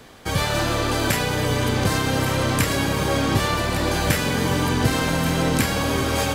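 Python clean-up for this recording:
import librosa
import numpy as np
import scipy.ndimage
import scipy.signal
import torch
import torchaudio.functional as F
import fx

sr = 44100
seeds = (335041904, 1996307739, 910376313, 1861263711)

y = fx.fix_echo_inverse(x, sr, delay_ms=1158, level_db=-11.5)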